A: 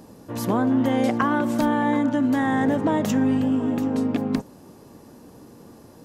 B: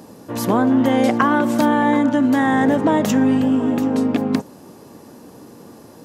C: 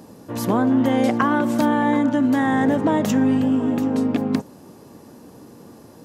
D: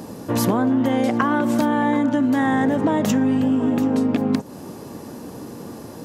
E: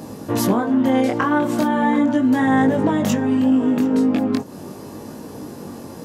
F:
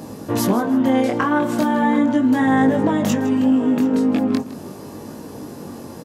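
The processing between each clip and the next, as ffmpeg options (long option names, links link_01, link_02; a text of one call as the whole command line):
ffmpeg -i in.wav -af "highpass=frequency=150:poles=1,volume=6dB" out.wav
ffmpeg -i in.wav -af "lowshelf=frequency=180:gain=4.5,volume=-3.5dB" out.wav
ffmpeg -i in.wav -af "acompressor=threshold=-25dB:ratio=6,volume=8.5dB" out.wav
ffmpeg -i in.wav -af "flanger=delay=19:depth=4.7:speed=0.39,volume=4dB" out.wav
ffmpeg -i in.wav -af "aecho=1:1:159|318|477:0.158|0.0539|0.0183" out.wav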